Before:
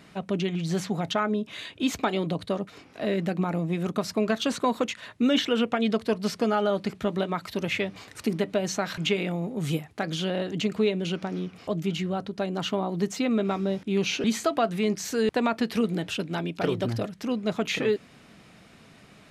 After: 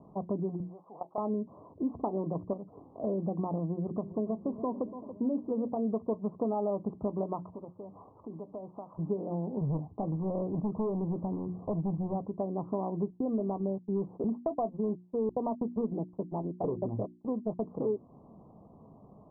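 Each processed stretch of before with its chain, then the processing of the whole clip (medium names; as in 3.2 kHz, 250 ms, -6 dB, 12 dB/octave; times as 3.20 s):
0.60–1.18 s: high-pass 570 Hz + level held to a coarse grid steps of 16 dB
2.53–3.04 s: dynamic bell 1.1 kHz, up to -6 dB, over -54 dBFS, Q 3 + compression 4:1, threshold -35 dBFS
3.79–5.76 s: peaking EQ 2.2 kHz -11 dB 2.9 oct + de-hum 198.3 Hz, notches 2 + modulated delay 284 ms, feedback 53%, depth 100 cents, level -15.5 dB
7.50–8.99 s: low-pass 1.5 kHz 6 dB/octave + tilt shelf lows -7 dB, about 760 Hz + compression 3:1, threshold -40 dBFS
9.61–12.15 s: bass shelf 180 Hz +8.5 dB + hard clipper -23.5 dBFS
13.10–17.66 s: gate -31 dBFS, range -30 dB + low-pass 1.2 kHz + hard clipper -18 dBFS
whole clip: steep low-pass 1.1 kHz 96 dB/octave; hum notches 60/120/180/240/300/360 Hz; compression 2:1, threshold -32 dBFS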